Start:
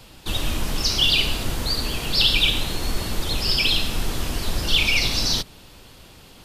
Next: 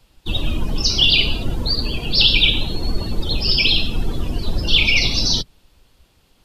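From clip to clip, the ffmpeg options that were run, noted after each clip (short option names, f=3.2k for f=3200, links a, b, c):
-af "afftdn=nr=17:nf=-29,volume=4.5dB"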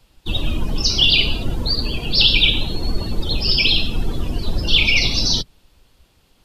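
-af anull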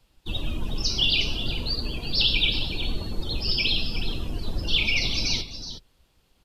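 -af "aecho=1:1:367:0.299,volume=-8dB"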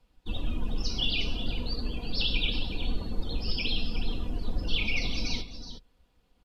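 -af "highshelf=f=3k:g=-10,aecho=1:1:4.1:0.4,volume=-3dB"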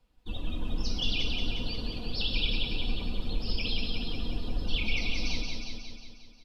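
-af "aecho=1:1:179|358|537|716|895|1074|1253|1432:0.631|0.366|0.212|0.123|0.0714|0.0414|0.024|0.0139,volume=-3dB"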